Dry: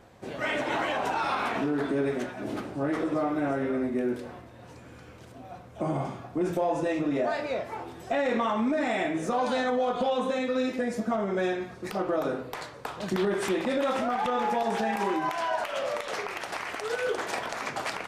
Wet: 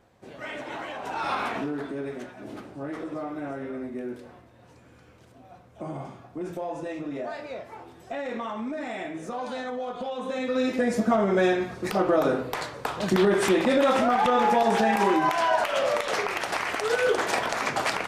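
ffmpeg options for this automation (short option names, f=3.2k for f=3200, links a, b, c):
-af "volume=13dB,afade=t=in:st=1.03:d=0.3:silence=0.398107,afade=t=out:st=1.33:d=0.57:silence=0.446684,afade=t=in:st=10.18:d=0.78:silence=0.251189"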